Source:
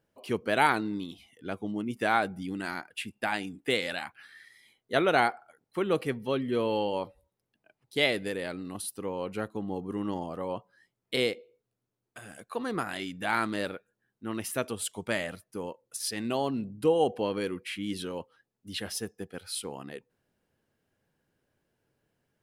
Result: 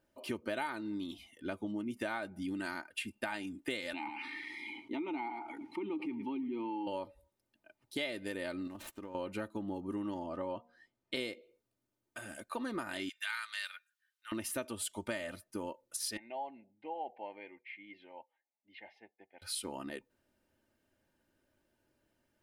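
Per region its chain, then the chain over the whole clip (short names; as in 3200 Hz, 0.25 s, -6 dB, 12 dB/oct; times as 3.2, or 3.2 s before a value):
3.93–6.87 vowel filter u + echo 0.11 s -22.5 dB + fast leveller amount 70%
8.67–9.15 median filter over 9 samples + compressor 10:1, threshold -41 dBFS
10.22–11.16 air absorption 74 m + de-hum 238.1 Hz, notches 3
13.09–14.32 HPF 1400 Hz 24 dB/oct + bell 3600 Hz +3.5 dB 0.93 oct
16.17–19.42 double band-pass 1300 Hz, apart 1.4 oct + air absorption 310 m
whole clip: comb 3.3 ms, depth 59%; compressor 6:1, threshold -34 dBFS; gain -1 dB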